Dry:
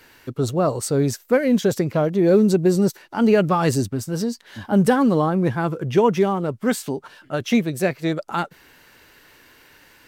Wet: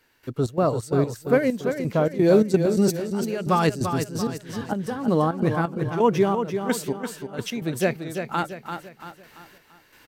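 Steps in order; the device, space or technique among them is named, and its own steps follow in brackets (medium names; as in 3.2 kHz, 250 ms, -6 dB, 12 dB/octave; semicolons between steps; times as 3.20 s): 2.16–3.67 s: peaking EQ 7.2 kHz +6.5 dB 2.7 oct; trance gate with a delay (trance gate "..xx.xx.x.xxx." 130 bpm -12 dB; feedback delay 340 ms, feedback 43%, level -7.5 dB); trim -1.5 dB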